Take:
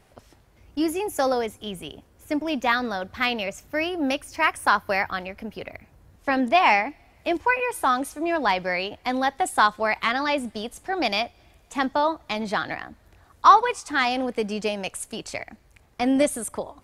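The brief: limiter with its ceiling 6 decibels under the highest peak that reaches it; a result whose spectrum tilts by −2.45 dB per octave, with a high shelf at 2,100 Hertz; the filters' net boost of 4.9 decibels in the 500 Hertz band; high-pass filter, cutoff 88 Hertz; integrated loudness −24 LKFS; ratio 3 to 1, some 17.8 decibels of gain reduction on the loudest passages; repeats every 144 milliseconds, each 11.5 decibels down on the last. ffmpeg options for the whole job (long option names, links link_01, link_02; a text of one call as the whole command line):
ffmpeg -i in.wav -af "highpass=88,equalizer=frequency=500:width_type=o:gain=5.5,highshelf=frequency=2100:gain=7,acompressor=threshold=-31dB:ratio=3,alimiter=limit=-21dB:level=0:latency=1,aecho=1:1:144|288|432:0.266|0.0718|0.0194,volume=9dB" out.wav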